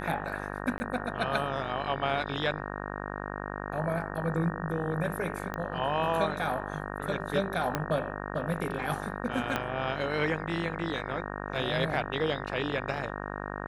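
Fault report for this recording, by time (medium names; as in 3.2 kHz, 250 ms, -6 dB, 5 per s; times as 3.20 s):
buzz 50 Hz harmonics 37 -37 dBFS
0.78–0.80 s: dropout 20 ms
5.54 s: pop -21 dBFS
7.75 s: pop -13 dBFS
9.56 s: pop -14 dBFS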